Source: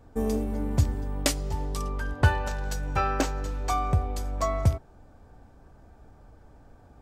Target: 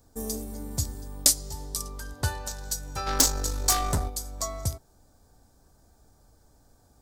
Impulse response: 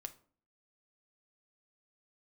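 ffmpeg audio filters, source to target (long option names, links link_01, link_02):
-filter_complex "[0:a]asplit=3[link_01][link_02][link_03];[link_01]afade=type=out:start_time=3.06:duration=0.02[link_04];[link_02]aeval=exprs='0.266*(cos(1*acos(clip(val(0)/0.266,-1,1)))-cos(1*PI/2))+0.0944*(cos(5*acos(clip(val(0)/0.266,-1,1)))-cos(5*PI/2))+0.133*(cos(6*acos(clip(val(0)/0.266,-1,1)))-cos(6*PI/2))+0.119*(cos(8*acos(clip(val(0)/0.266,-1,1)))-cos(8*PI/2))':channel_layout=same,afade=type=in:start_time=3.06:duration=0.02,afade=type=out:start_time=4.08:duration=0.02[link_05];[link_03]afade=type=in:start_time=4.08:duration=0.02[link_06];[link_04][link_05][link_06]amix=inputs=3:normalize=0,aexciter=amount=7.8:drive=4:freq=3900,volume=-8dB"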